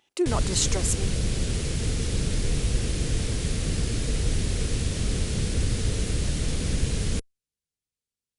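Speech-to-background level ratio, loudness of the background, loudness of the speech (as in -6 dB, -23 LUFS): 1.0 dB, -28.0 LUFS, -27.0 LUFS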